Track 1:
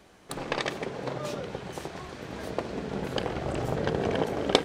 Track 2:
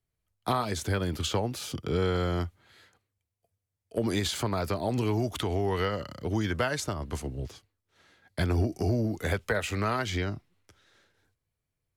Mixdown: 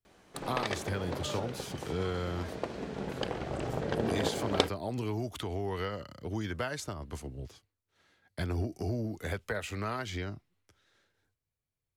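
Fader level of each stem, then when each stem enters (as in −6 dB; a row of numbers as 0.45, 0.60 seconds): −4.5, −6.5 decibels; 0.05, 0.00 seconds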